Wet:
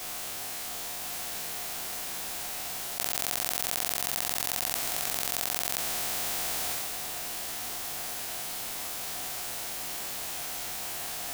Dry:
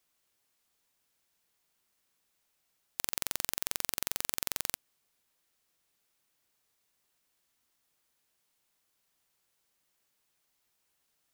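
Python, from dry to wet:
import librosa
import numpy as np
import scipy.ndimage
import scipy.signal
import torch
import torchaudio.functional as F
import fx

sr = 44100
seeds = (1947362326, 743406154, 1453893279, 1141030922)

y = fx.spec_trails(x, sr, decay_s=1.7)
y = fx.peak_eq(y, sr, hz=720.0, db=10.0, octaves=0.27)
y = y + 10.0 ** (-7.0 / 20.0) * np.pad(y, (int(1028 * sr / 1000.0), 0))[:len(y)]
y = fx.env_flatten(y, sr, amount_pct=100)
y = y * librosa.db_to_amplitude(-3.0)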